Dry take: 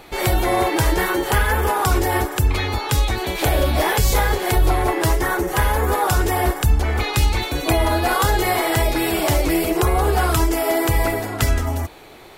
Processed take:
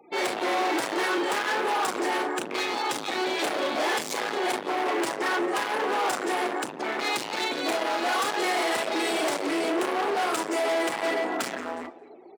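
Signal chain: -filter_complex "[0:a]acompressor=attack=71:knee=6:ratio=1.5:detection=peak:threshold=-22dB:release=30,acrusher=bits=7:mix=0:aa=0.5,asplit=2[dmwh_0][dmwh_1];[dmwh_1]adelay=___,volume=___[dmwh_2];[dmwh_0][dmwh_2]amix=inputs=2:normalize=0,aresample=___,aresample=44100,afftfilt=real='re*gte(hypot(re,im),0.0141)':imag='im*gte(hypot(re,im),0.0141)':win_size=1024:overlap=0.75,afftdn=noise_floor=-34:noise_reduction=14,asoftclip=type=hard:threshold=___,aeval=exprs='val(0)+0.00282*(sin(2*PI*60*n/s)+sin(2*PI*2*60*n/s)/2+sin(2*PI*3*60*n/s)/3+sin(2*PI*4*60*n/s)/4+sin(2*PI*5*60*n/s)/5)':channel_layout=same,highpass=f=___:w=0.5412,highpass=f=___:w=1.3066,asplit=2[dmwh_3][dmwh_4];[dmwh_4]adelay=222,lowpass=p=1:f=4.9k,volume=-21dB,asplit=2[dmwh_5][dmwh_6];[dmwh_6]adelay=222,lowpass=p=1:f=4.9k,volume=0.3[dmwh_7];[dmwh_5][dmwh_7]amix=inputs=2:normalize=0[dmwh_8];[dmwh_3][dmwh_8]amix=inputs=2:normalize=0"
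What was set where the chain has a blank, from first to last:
35, -5dB, 22050, -23.5dB, 260, 260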